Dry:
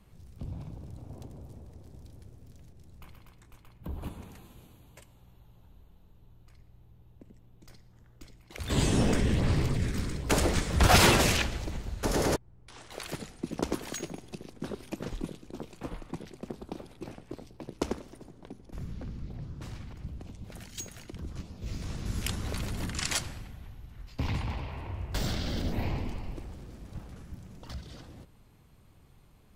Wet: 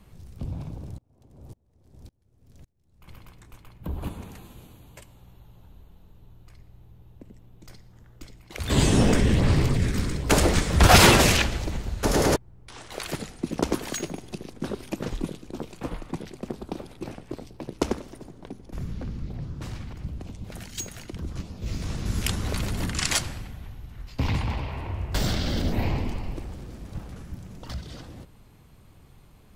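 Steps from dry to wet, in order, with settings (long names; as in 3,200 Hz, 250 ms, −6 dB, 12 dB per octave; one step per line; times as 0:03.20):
0:00.98–0:03.08: tremolo with a ramp in dB swelling 1.8 Hz, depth 33 dB
level +6 dB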